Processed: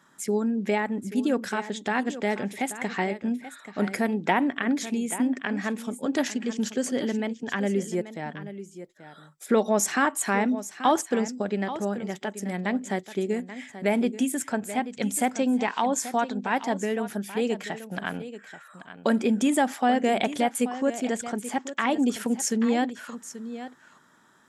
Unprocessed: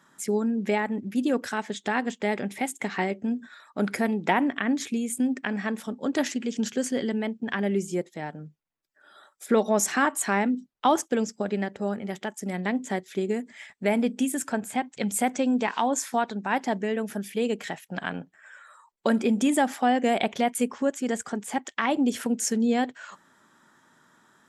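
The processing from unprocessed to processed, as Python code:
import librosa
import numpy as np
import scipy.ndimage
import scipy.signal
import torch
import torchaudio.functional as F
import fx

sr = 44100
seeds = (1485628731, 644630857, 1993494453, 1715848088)

y = x + 10.0 ** (-13.0 / 20.0) * np.pad(x, (int(833 * sr / 1000.0), 0))[:len(x)]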